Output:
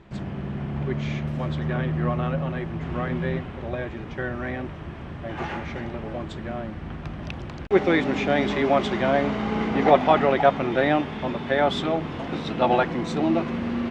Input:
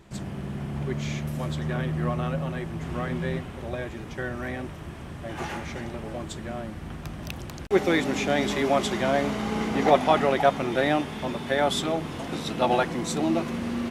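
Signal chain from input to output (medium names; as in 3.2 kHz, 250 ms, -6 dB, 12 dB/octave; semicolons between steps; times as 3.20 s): low-pass 3.2 kHz 12 dB/octave; trim +2.5 dB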